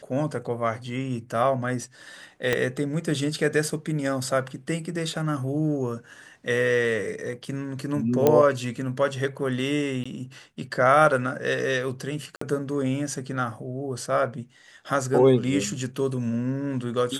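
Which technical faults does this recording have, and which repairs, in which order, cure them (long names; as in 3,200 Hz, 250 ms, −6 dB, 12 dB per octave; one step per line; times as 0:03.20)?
0:02.53: click −9 dBFS
0:08.27: click −6 dBFS
0:10.04–0:10.05: drop-out 15 ms
0:12.36–0:12.41: drop-out 54 ms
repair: click removal
repair the gap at 0:10.04, 15 ms
repair the gap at 0:12.36, 54 ms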